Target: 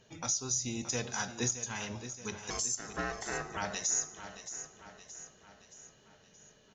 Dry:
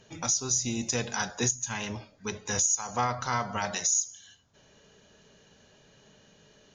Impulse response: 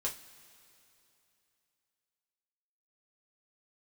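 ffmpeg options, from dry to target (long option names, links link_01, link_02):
-filter_complex "[0:a]asettb=1/sr,asplit=3[link_01][link_02][link_03];[link_01]atrim=end=2.504[link_04];[link_02]atrim=start=2.5:end=3.57,asetpts=PTS-STARTPTS,afade=type=in:duration=0.004:curve=qsin,afade=type=out:start_time=1.066:duration=0.004:curve=qsin,aeval=exprs='val(0)*sin(2*PI*560*n/s)':channel_layout=same[link_05];[link_03]atrim=start=3.566[link_06];[link_04][link_05]acrossfade=duration=0.004:curve1=hsin:curve2=qsin[link_07];[link_07][link_06]acrossfade=duration=0.004:curve1=qsin:curve2=hsin,aecho=1:1:623|1246|1869|2492|3115:0.266|0.136|0.0692|0.0353|0.018,asplit=2[link_08][link_09];[1:a]atrim=start_sample=2205,asetrate=24696,aresample=44100[link_10];[link_09][link_10]afir=irnorm=-1:irlink=0,volume=-23dB[link_11];[link_08][link_11]amix=inputs=2:normalize=0,volume=-6dB"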